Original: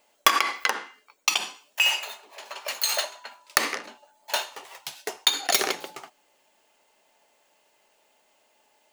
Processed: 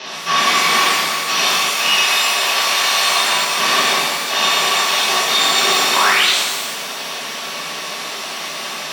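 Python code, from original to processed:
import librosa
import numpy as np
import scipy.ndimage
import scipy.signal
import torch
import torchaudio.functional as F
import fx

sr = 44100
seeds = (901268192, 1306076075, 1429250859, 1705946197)

y = fx.bin_compress(x, sr, power=0.4)
y = fx.fuzz(y, sr, gain_db=36.0, gate_db=-30.0)
y = scipy.signal.sosfilt(scipy.signal.cheby1(5, 1.0, [150.0, 5900.0], 'bandpass', fs=sr, output='sos'), y)
y = fx.low_shelf(y, sr, hz=390.0, db=-8.5, at=(1.9, 3.09))
y = y + 10.0 ** (-10.0 / 20.0) * np.pad(y, (int(360 * sr / 1000.0), 0))[:len(y)]
y = fx.spec_paint(y, sr, seeds[0], shape='rise', start_s=5.93, length_s=0.36, low_hz=900.0, high_hz=4600.0, level_db=-16.0)
y = fx.rev_shimmer(y, sr, seeds[1], rt60_s=1.2, semitones=12, shimmer_db=-8, drr_db=-10.5)
y = F.gain(torch.from_numpy(y), -10.0).numpy()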